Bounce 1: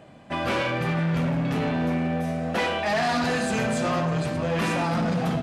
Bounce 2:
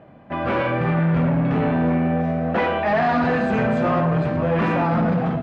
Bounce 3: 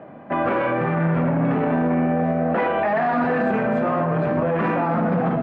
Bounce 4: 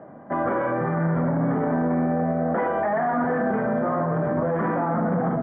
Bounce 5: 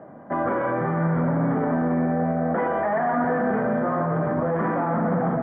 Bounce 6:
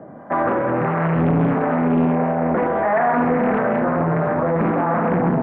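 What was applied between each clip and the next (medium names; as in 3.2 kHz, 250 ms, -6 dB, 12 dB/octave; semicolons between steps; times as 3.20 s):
low-pass 1.8 kHz 12 dB/octave; level rider gain up to 3.5 dB; trim +2 dB
three-band isolator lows -13 dB, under 170 Hz, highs -13 dB, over 2.4 kHz; peak limiter -21 dBFS, peak gain reduction 10 dB; trim +7.5 dB
Savitzky-Golay filter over 41 samples; trim -2.5 dB
thinning echo 172 ms, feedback 78%, high-pass 640 Hz, level -9 dB
harmonic tremolo 1.5 Hz, depth 50%, crossover 520 Hz; loudspeaker Doppler distortion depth 0.58 ms; trim +7 dB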